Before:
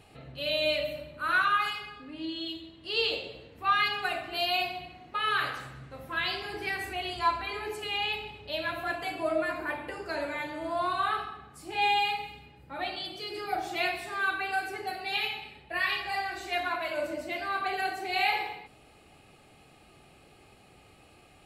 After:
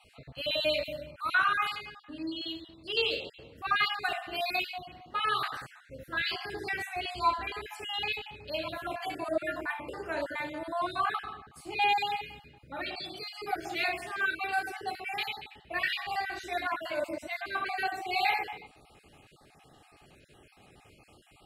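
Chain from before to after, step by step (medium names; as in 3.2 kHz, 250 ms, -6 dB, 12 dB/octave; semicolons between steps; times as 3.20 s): random holes in the spectrogram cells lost 31%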